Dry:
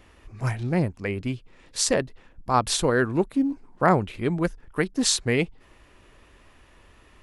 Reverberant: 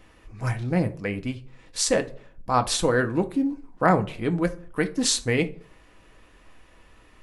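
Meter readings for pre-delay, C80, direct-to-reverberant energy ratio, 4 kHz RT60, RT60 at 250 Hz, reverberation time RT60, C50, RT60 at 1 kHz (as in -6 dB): 4 ms, 22.5 dB, 6.0 dB, 0.25 s, 0.50 s, 0.50 s, 17.5 dB, 0.45 s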